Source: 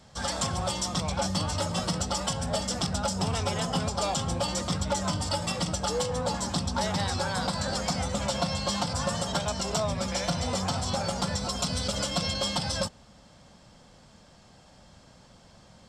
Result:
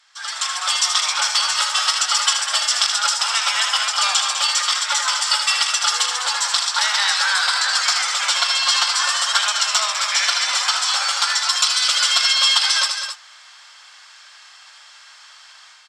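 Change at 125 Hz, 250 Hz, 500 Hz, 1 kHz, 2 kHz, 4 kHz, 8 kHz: below −40 dB, below −40 dB, −9.0 dB, +8.5 dB, +17.5 dB, +16.0 dB, +13.5 dB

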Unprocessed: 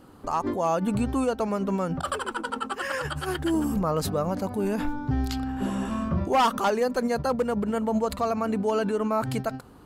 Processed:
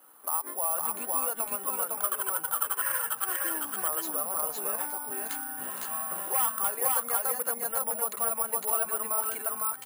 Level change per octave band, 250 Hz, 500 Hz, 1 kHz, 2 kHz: −21.5, −11.5, −5.5, −3.5 decibels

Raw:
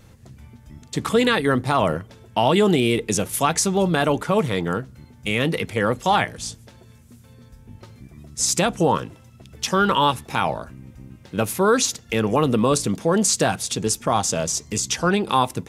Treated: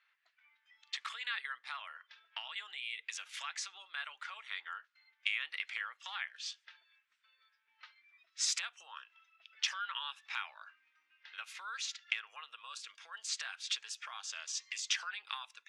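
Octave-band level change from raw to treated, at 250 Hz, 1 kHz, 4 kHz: below −40 dB, −24.5 dB, −11.5 dB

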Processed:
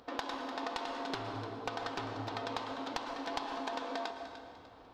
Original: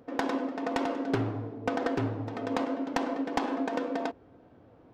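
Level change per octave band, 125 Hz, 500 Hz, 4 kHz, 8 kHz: −11.5, −8.5, +2.0, −2.5 decibels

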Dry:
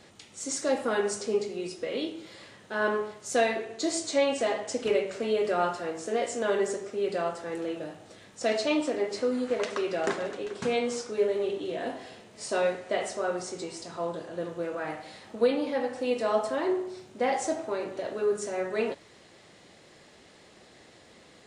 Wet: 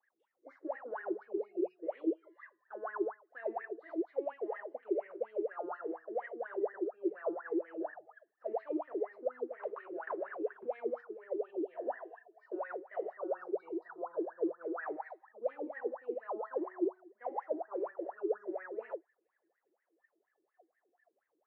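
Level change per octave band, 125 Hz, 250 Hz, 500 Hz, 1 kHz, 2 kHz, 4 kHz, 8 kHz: below −30 dB, −7.0 dB, −9.5 dB, −10.0 dB, −13.5 dB, below −35 dB, below −40 dB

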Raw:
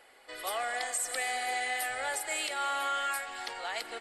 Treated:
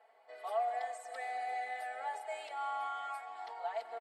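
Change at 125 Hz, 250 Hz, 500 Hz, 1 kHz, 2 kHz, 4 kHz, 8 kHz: can't be measured, below −15 dB, −1.0 dB, −2.5 dB, −12.0 dB, −17.5 dB, −23.5 dB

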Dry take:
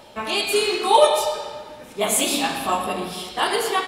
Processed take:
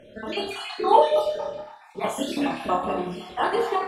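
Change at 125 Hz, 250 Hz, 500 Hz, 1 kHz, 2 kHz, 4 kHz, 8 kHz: −0.5, 0.0, −2.5, −2.0, −7.0, −10.5, −18.0 decibels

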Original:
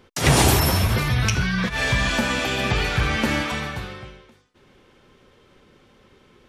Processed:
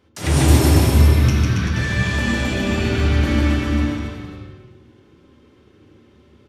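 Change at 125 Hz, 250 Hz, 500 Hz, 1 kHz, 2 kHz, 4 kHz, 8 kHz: +6.5, +6.0, +2.0, −3.0, −1.5, −3.0, −2.0 decibels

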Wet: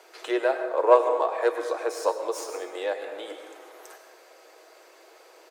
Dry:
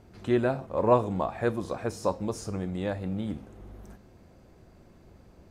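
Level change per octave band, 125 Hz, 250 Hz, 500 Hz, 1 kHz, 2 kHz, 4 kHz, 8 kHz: below −40 dB, −6.5 dB, +4.5 dB, +5.0 dB, +5.5 dB, +6.0 dB, +5.0 dB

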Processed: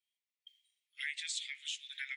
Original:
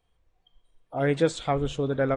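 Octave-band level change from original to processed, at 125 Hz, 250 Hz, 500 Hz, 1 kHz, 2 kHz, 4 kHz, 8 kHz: below −40 dB, below −40 dB, below −40 dB, below −35 dB, −5.0 dB, +0.5 dB, +0.5 dB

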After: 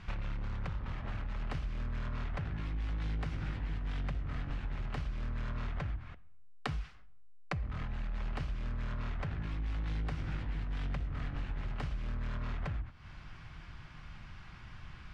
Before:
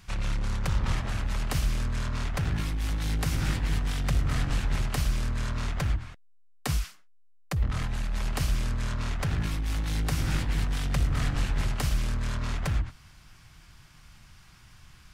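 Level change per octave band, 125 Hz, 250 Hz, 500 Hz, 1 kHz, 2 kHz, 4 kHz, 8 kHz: −9.5 dB, −9.0 dB, −8.0 dB, −8.0 dB, −9.0 dB, −14.0 dB, below −25 dB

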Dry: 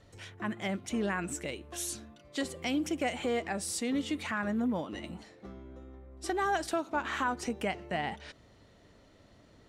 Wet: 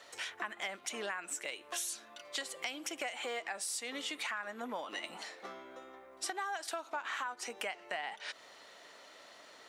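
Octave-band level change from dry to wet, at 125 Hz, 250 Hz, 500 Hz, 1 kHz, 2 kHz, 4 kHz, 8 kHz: below −20 dB, −17.5 dB, −8.5 dB, −6.0 dB, −2.5 dB, +0.5 dB, −0.5 dB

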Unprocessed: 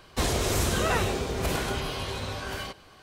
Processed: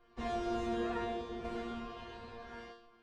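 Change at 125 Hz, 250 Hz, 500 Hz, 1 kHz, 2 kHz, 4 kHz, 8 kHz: −21.0, −6.0, −9.0, −8.5, −15.5, −19.0, −29.0 decibels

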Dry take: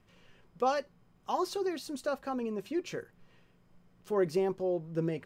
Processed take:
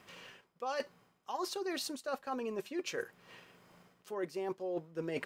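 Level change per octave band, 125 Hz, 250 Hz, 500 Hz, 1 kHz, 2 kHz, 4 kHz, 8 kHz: −11.5, −7.0, −6.0, −6.0, +0.5, +1.5, +1.5 decibels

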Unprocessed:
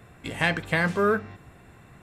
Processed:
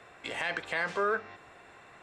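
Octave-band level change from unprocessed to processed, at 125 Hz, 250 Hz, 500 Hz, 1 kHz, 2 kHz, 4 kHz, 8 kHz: −20.5, −16.0, −7.5, −4.5, −6.0, −6.0, −6.5 decibels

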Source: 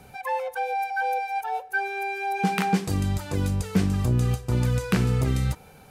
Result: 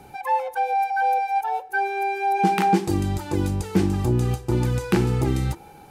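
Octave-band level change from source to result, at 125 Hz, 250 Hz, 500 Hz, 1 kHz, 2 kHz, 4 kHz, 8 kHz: +0.5, +3.0, +4.5, +6.0, 0.0, 0.0, 0.0 decibels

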